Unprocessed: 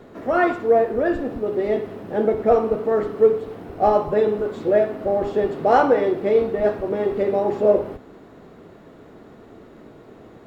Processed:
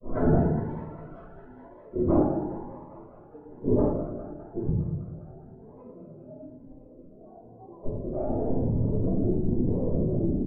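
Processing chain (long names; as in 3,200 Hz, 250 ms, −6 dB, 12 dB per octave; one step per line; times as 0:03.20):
adaptive Wiener filter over 25 samples
low-shelf EQ 110 Hz +10.5 dB
comb filter 6.8 ms, depth 44%
dynamic equaliser 1,000 Hz, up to −5 dB, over −30 dBFS, Q 1.2
gate with flip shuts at −21 dBFS, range −40 dB
low-pass filter sweep 1,100 Hz → 320 Hz, 0:00.90–0:02.53
granular cloud 128 ms, grains 19 per second, pitch spread up and down by 12 semitones
feedback echo with a high-pass in the loop 203 ms, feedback 85%, high-pass 610 Hz, level −9 dB
rectangular room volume 310 cubic metres, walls mixed, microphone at 5.5 metres
phaser whose notches keep moving one way rising 1 Hz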